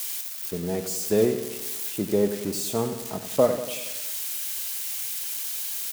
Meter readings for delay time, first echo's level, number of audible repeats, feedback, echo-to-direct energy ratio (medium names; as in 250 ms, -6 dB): 93 ms, -10.5 dB, 6, 58%, -8.5 dB